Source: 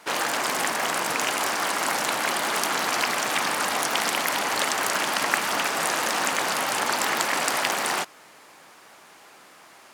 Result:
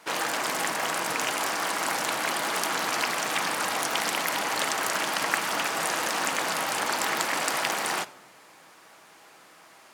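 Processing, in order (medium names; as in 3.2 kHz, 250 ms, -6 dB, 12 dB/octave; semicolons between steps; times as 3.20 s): simulated room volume 3100 m³, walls furnished, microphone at 0.63 m; trim -3 dB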